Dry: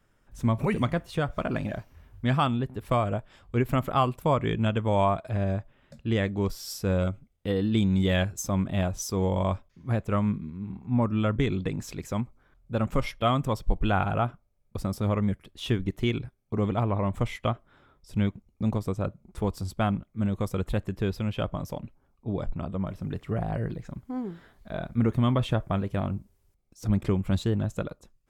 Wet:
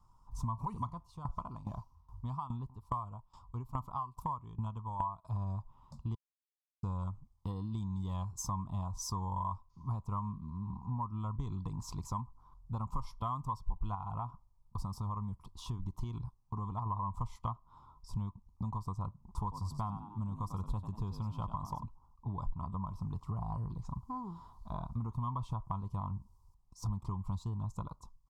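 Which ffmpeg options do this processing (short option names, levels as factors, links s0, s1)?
-filter_complex "[0:a]asplit=3[s0][s1][s2];[s0]afade=t=out:st=0.89:d=0.02[s3];[s1]aeval=exprs='val(0)*pow(10,-19*if(lt(mod(2.4*n/s,1),2*abs(2.4)/1000),1-mod(2.4*n/s,1)/(2*abs(2.4)/1000),(mod(2.4*n/s,1)-2*abs(2.4)/1000)/(1-2*abs(2.4)/1000))/20)':c=same,afade=t=in:st=0.89:d=0.02,afade=t=out:st=5.23:d=0.02[s4];[s2]afade=t=in:st=5.23:d=0.02[s5];[s3][s4][s5]amix=inputs=3:normalize=0,asettb=1/sr,asplit=3[s6][s7][s8];[s6]atrim=end=13.954[s9];[s7]atrim=start=13.95:end=16.86,asetpts=PTS-STARTPTS,afade=t=in:d=0.004:c=qsin,afade=t=out:st=2.906:d=0.004:c=qsin,acompressor=threshold=0.0112:ratio=1.5:attack=3.2:release=140:knee=1:detection=peak[s10];[s8]atrim=start=16.856[s11];[s9][s10]acrossfade=d=0.004:c1=hsin:c2=qsin[s12];[s12][s11]acrossfade=d=0.004:c1=qsin:c2=hsin,asettb=1/sr,asplit=3[s13][s14][s15];[s13]atrim=end=19.424[s16];[s14]atrim=start=19.42:end=21.83,asetpts=PTS-STARTPTS,afade=t=in:d=0.004:c=qsin,afade=t=out:st=2.406:d=0.004:c=qsin,asplit=4[s17][s18][s19][s20];[s18]adelay=95,afreqshift=53,volume=0.299[s21];[s19]adelay=190,afreqshift=106,volume=0.0955[s22];[s20]adelay=285,afreqshift=159,volume=0.0305[s23];[s17][s21][s22][s23]amix=inputs=4:normalize=0,atrim=end_sample=106281[s24];[s15]atrim=start=21.826[s25];[s16][s24]acrossfade=d=0.004:c1=hsin:c2=qsin[s26];[s26][s25]acrossfade=d=0.004:c1=qsin:c2=hsin,asplit=3[s27][s28][s29];[s27]atrim=end=6.15,asetpts=PTS-STARTPTS,afade=t=out:st=6.146:d=0.004:c=hsin[s30];[s28]atrim=start=6.15:end=6.83,asetpts=PTS-STARTPTS,volume=0[s31];[s29]atrim=start=6.83,asetpts=PTS-STARTPTS,afade=t=in:d=0.004:c=hsin[s32];[s30][s31][s32]concat=n=3:v=0:a=1,firequalizer=gain_entry='entry(130,0);entry(580,-12);entry(1000,15);entry(1600,-30);entry(4800,-7);entry(13000,-14)':delay=0.05:min_phase=1,acompressor=threshold=0.0178:ratio=6,equalizer=f=370:t=o:w=2.4:g=-11.5,volume=1.78"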